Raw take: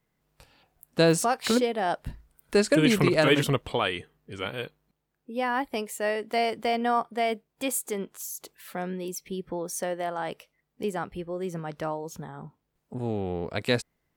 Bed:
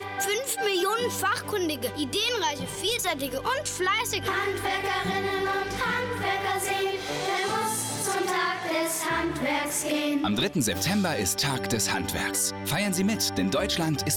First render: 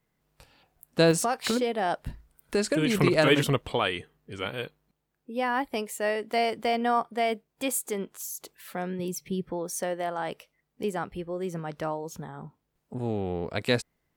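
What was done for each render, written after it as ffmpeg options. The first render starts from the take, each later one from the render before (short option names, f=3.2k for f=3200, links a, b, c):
-filter_complex "[0:a]asettb=1/sr,asplit=3[a][b][c];[a]atrim=end=1.114[d];[b]atrim=start=1.11:end=2.95,asetpts=PTS-STARTPTS,afade=t=in:d=0.004:c=qsin,afade=t=out:st=1.836:d=0.004:c=qsin,acompressor=threshold=-21dB:ratio=4:attack=3.2:release=140:knee=1:detection=peak[e];[c]atrim=start=2.946[f];[d][e]acrossfade=d=0.004:c1=hsin:c2=qsin[g];[g][f]acrossfade=d=0.004:c1=qsin:c2=hsin,asettb=1/sr,asplit=3[h][i][j];[h]atrim=end=8.994[k];[i]atrim=start=8.99:end=9.44,asetpts=PTS-STARTPTS,afade=t=in:d=0.004:c=qsin,afade=t=out:st=0.446:d=0.004:c=qsin,equalizer=f=130:t=o:w=0.77:g=14.5[l];[j]atrim=start=9.436[m];[k][l]acrossfade=d=0.004:c1=hsin:c2=qsin[n];[n][m]acrossfade=d=0.004:c1=qsin:c2=hsin"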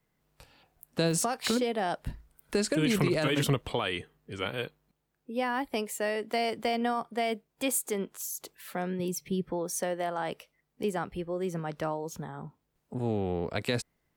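-filter_complex "[0:a]alimiter=limit=-16dB:level=0:latency=1:release=37,acrossover=split=280|3000[a][b][c];[b]acompressor=threshold=-27dB:ratio=6[d];[a][d][c]amix=inputs=3:normalize=0"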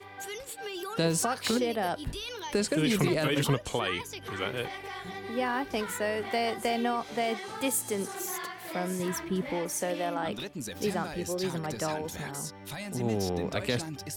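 -filter_complex "[1:a]volume=-12.5dB[a];[0:a][a]amix=inputs=2:normalize=0"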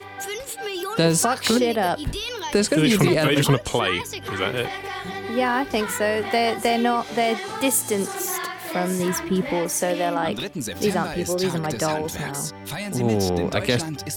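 -af "volume=8.5dB"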